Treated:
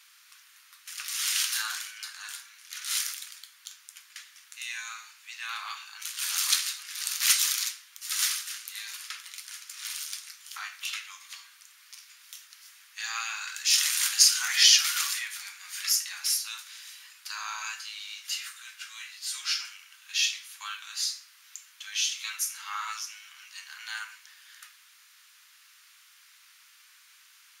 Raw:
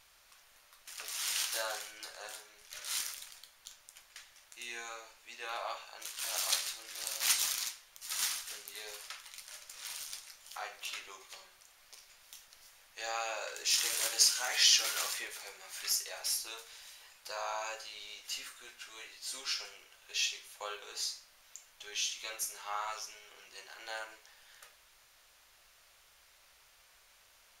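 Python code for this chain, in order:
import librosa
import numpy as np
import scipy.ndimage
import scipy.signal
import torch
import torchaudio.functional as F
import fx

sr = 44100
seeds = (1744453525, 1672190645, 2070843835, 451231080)

y = scipy.signal.sosfilt(scipy.signal.cheby2(4, 40, 600.0, 'highpass', fs=sr, output='sos'), x)
y = y * 10.0 ** (7.0 / 20.0)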